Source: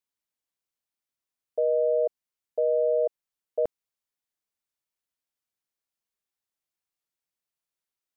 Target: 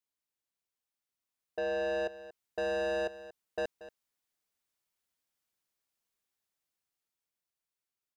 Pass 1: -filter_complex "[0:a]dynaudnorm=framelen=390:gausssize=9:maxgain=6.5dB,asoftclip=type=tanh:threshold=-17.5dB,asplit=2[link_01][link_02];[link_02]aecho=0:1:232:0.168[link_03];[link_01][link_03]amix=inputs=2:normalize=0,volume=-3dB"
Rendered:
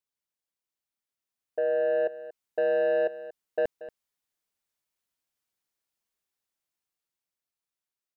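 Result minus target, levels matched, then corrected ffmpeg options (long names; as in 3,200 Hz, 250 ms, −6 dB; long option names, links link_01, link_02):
soft clipping: distortion −7 dB
-filter_complex "[0:a]dynaudnorm=framelen=390:gausssize=9:maxgain=6.5dB,asoftclip=type=tanh:threshold=-27.5dB,asplit=2[link_01][link_02];[link_02]aecho=0:1:232:0.168[link_03];[link_01][link_03]amix=inputs=2:normalize=0,volume=-3dB"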